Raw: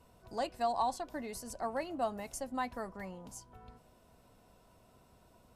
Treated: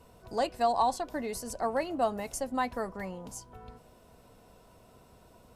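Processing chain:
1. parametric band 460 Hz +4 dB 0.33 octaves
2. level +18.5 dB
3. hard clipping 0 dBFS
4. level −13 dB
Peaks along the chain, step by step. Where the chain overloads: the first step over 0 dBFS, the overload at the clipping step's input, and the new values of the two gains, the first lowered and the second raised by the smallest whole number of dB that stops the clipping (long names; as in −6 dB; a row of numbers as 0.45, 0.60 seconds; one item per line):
−21.0, −2.5, −2.5, −15.5 dBFS
no step passes full scale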